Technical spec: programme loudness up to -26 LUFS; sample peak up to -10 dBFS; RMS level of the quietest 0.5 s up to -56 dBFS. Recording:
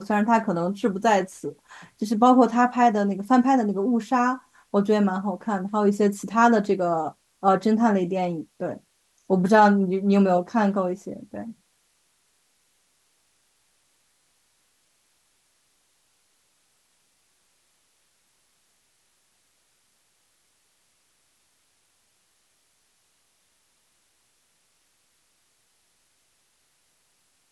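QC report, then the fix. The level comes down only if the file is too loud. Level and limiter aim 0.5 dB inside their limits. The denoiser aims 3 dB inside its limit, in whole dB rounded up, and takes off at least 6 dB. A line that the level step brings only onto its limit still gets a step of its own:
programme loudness -22.0 LUFS: fail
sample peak -6.0 dBFS: fail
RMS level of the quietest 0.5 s -67 dBFS: OK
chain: gain -4.5 dB

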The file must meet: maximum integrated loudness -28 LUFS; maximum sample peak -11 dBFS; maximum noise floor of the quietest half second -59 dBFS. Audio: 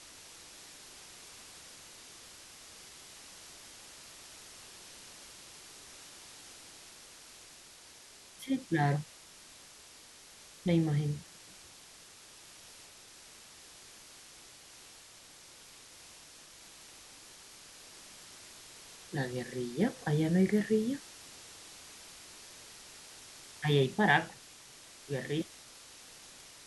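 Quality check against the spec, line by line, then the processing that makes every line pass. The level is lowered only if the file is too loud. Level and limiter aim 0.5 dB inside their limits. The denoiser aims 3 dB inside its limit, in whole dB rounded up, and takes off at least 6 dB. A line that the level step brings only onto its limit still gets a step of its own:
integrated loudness -32.0 LUFS: OK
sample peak -11.5 dBFS: OK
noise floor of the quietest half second -55 dBFS: fail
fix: denoiser 7 dB, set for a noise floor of -55 dBFS

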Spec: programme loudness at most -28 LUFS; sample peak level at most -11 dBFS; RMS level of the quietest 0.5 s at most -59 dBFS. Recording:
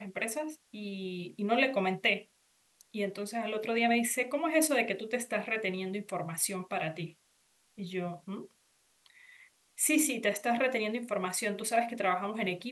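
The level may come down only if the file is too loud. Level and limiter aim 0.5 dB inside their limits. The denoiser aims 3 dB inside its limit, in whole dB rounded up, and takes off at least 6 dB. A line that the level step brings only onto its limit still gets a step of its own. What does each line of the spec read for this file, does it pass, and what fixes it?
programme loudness -31.5 LUFS: OK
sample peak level -13.5 dBFS: OK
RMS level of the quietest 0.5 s -70 dBFS: OK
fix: none

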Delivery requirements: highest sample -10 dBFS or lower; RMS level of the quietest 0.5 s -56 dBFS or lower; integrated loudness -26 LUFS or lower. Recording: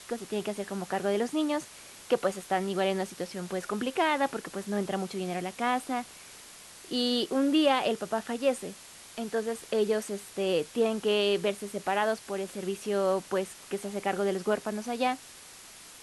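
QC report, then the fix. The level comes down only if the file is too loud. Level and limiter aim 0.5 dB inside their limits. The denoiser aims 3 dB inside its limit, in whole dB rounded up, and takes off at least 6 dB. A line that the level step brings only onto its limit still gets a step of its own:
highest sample -13.0 dBFS: OK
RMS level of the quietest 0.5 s -49 dBFS: fail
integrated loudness -30.0 LUFS: OK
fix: denoiser 10 dB, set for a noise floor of -49 dBFS

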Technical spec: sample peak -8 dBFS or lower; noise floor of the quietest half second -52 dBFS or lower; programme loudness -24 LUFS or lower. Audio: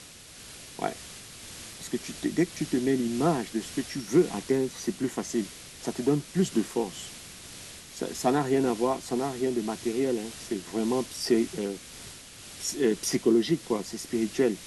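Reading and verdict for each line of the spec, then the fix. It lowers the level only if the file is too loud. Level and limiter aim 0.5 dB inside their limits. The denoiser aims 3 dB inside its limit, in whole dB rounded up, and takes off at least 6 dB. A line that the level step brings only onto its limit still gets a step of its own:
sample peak -11.0 dBFS: OK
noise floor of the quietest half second -47 dBFS: fail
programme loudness -28.5 LUFS: OK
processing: denoiser 8 dB, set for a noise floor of -47 dBFS

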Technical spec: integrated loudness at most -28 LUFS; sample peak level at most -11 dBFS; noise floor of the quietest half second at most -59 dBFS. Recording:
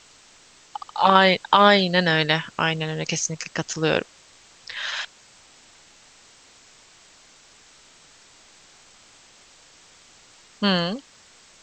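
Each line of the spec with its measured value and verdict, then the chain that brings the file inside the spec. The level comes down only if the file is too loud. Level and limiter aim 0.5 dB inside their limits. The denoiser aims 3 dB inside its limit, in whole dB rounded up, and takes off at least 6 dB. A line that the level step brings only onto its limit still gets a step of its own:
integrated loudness -21.0 LUFS: fail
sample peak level -2.5 dBFS: fail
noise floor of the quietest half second -53 dBFS: fail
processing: gain -7.5 dB; limiter -11.5 dBFS

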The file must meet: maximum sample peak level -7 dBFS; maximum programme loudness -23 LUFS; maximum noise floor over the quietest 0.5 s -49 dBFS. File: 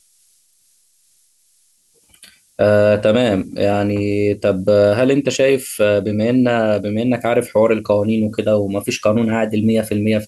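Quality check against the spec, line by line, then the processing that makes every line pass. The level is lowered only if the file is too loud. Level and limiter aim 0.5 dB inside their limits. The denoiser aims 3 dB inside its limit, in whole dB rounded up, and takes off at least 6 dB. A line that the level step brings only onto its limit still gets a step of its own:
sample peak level -4.0 dBFS: fail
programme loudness -16.5 LUFS: fail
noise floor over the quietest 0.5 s -58 dBFS: OK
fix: gain -7 dB

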